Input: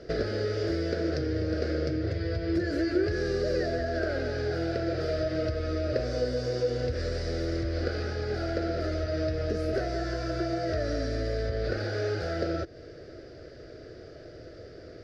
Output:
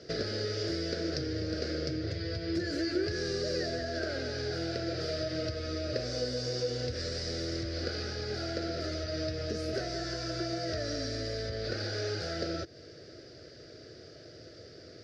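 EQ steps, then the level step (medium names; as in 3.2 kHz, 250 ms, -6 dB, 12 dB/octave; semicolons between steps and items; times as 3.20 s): high-pass 120 Hz 12 dB/octave; bass shelf 200 Hz +9.5 dB; peaking EQ 5.6 kHz +13.5 dB 2.3 oct; -7.5 dB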